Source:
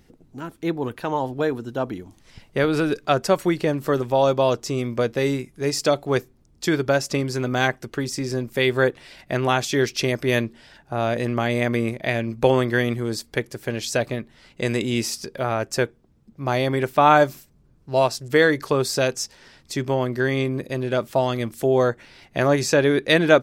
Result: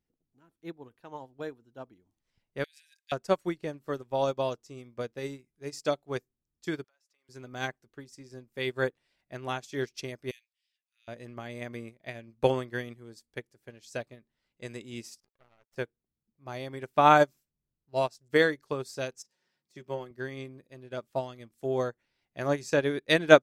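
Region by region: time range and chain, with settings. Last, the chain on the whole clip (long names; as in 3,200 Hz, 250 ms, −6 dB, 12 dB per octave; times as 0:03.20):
0:02.64–0:03.12: de-essing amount 55% + Chebyshev high-pass filter 1,600 Hz, order 10 + high-shelf EQ 4,300 Hz +10 dB
0:06.84–0:07.29: high-pass filter 1,100 Hz + downward compressor, threshold −42 dBFS
0:10.31–0:11.08: Butterworth high-pass 2,200 Hz + saturating transformer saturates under 2,000 Hz
0:15.20–0:15.76: gain on one half-wave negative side −12 dB + power curve on the samples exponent 2 + parametric band 12,000 Hz −4.5 dB 2.1 octaves
0:19.22–0:20.11: de-essing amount 75% + high-pass filter 130 Hz + comb filter 5.5 ms, depth 44%
whole clip: dynamic equaliser 7,100 Hz, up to +4 dB, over −44 dBFS, Q 1.1; expander for the loud parts 2.5 to 1, over −30 dBFS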